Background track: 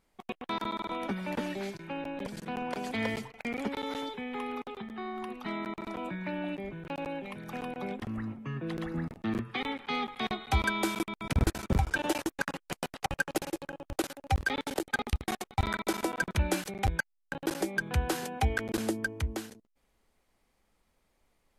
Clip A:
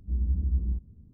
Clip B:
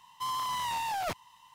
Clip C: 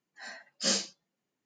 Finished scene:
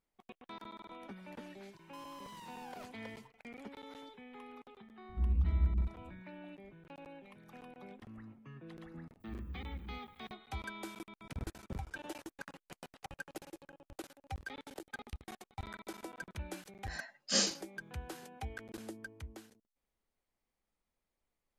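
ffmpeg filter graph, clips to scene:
ffmpeg -i bed.wav -i cue0.wav -i cue1.wav -i cue2.wav -filter_complex "[1:a]asplit=2[link_01][link_02];[0:a]volume=-15dB[link_03];[2:a]acompressor=threshold=-39dB:ratio=6:attack=3.2:release=140:knee=1:detection=peak[link_04];[link_02]aemphasis=mode=production:type=riaa[link_05];[link_04]atrim=end=1.54,asetpts=PTS-STARTPTS,volume=-10.5dB,afade=type=in:duration=0.004:curve=hsin,afade=type=out:start_time=1.536:duration=0.004:curve=hsin,adelay=1730[link_06];[link_01]atrim=end=1.13,asetpts=PTS-STARTPTS,volume=-3.5dB,afade=type=in:duration=0.004:curve=hsin,afade=type=out:start_time=1.126:duration=0.004:curve=hsin,adelay=224469S[link_07];[link_05]atrim=end=1.13,asetpts=PTS-STARTPTS,volume=-3dB,afade=type=in:duration=0.004:curve=hsin,afade=type=out:start_time=1.126:duration=0.004:curve=hsin,adelay=9200[link_08];[3:a]atrim=end=1.45,asetpts=PTS-STARTPTS,volume=-2dB,afade=type=in:duration=0.004:curve=hsin,afade=type=out:start_time=1.446:duration=0.004:curve=hsin,adelay=735588S[link_09];[link_03][link_06][link_07][link_08][link_09]amix=inputs=5:normalize=0" out.wav

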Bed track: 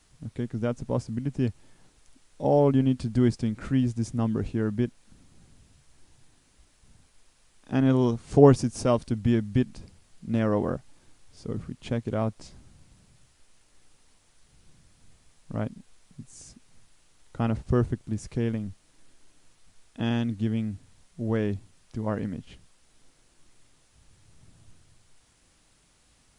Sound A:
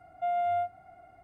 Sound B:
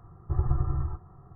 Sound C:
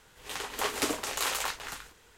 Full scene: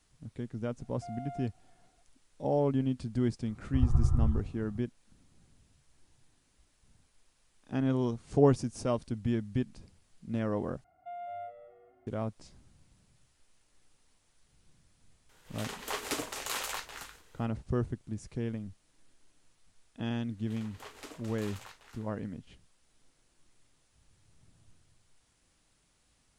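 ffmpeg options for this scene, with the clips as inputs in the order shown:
ffmpeg -i bed.wav -i cue0.wav -i cue1.wav -i cue2.wav -filter_complex "[1:a]asplit=2[link_01][link_02];[3:a]asplit=2[link_03][link_04];[0:a]volume=-7.5dB[link_05];[2:a]asubboost=boost=8:cutoff=240[link_06];[link_02]asplit=5[link_07][link_08][link_09][link_10][link_11];[link_08]adelay=205,afreqshift=-110,volume=-12dB[link_12];[link_09]adelay=410,afreqshift=-220,volume=-19.7dB[link_13];[link_10]adelay=615,afreqshift=-330,volume=-27.5dB[link_14];[link_11]adelay=820,afreqshift=-440,volume=-35.2dB[link_15];[link_07][link_12][link_13][link_14][link_15]amix=inputs=5:normalize=0[link_16];[link_04]highshelf=frequency=7300:gain=-6.5[link_17];[link_05]asplit=2[link_18][link_19];[link_18]atrim=end=10.844[link_20];[link_16]atrim=end=1.23,asetpts=PTS-STARTPTS,volume=-13dB[link_21];[link_19]atrim=start=12.066[link_22];[link_01]atrim=end=1.23,asetpts=PTS-STARTPTS,volume=-16dB,afade=type=in:duration=0.004:curve=hsin,afade=type=out:start_time=1.226:duration=0.004:curve=hsin,adelay=800[link_23];[link_06]atrim=end=1.35,asetpts=PTS-STARTPTS,volume=-6.5dB,afade=type=in:duration=0.004:curve=hsin,afade=type=out:start_time=1.346:duration=0.004:curve=hsin,adelay=3440[link_24];[link_03]atrim=end=2.17,asetpts=PTS-STARTPTS,volume=-5dB,afade=type=in:duration=0.004:curve=hsin,afade=type=out:start_time=2.166:duration=0.004:curve=hsin,adelay=15290[link_25];[link_17]atrim=end=2.17,asetpts=PTS-STARTPTS,volume=-17dB,afade=type=in:duration=0.004:curve=hsin,afade=type=out:start_time=2.166:duration=0.004:curve=hsin,adelay=20210[link_26];[link_20][link_21]acrossfade=duration=0.004:curve1=hsin:curve2=hsin[link_27];[link_27][link_22]acrossfade=duration=0.004:curve1=hsin:curve2=hsin[link_28];[link_28][link_23][link_24][link_25][link_26]amix=inputs=5:normalize=0" out.wav

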